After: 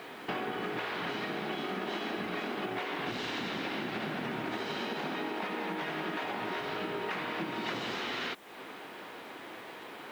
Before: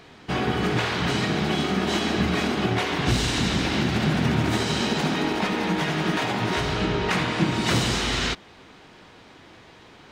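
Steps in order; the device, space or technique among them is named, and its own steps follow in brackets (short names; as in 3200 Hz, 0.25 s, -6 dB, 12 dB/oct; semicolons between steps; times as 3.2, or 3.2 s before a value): baby monitor (BPF 300–3100 Hz; compressor 6:1, threshold -39 dBFS, peak gain reduction 16.5 dB; white noise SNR 27 dB); gain +5 dB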